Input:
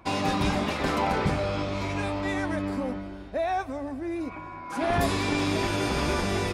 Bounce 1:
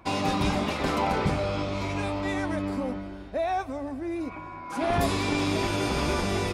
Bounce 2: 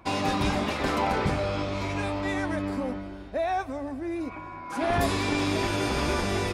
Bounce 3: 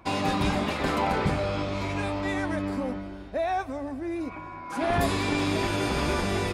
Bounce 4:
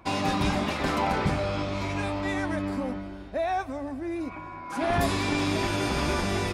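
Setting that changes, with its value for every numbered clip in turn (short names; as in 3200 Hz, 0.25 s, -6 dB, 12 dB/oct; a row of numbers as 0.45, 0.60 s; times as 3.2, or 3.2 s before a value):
dynamic EQ, frequency: 1700, 170, 5700, 460 Hz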